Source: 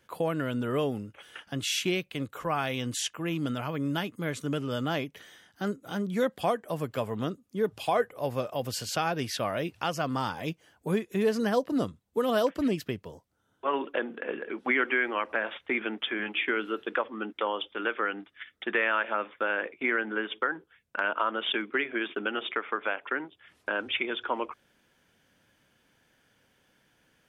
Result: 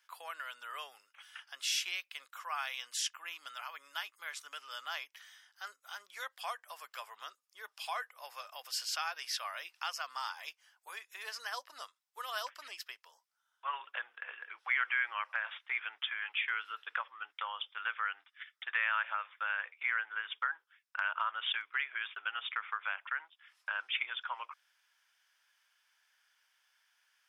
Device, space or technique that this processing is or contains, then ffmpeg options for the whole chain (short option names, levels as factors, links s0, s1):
headphones lying on a table: -af "highpass=f=1000:w=0.5412,highpass=f=1000:w=1.3066,equalizer=f=5200:t=o:w=0.22:g=8,volume=0.596"